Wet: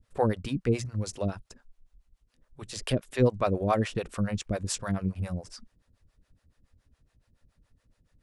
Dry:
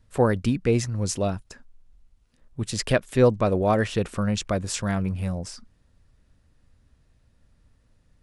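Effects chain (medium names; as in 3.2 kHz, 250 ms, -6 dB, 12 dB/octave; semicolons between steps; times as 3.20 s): harmonic tremolo 7.1 Hz, depth 100%, crossover 460 Hz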